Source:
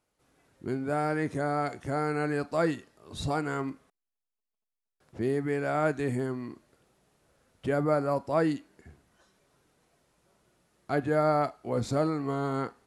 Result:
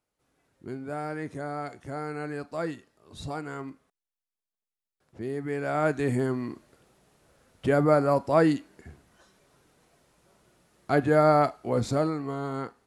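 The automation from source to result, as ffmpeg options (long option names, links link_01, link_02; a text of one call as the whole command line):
ffmpeg -i in.wav -af "volume=5dB,afade=type=in:start_time=5.28:duration=1.06:silence=0.316228,afade=type=out:start_time=11.52:duration=0.78:silence=0.446684" out.wav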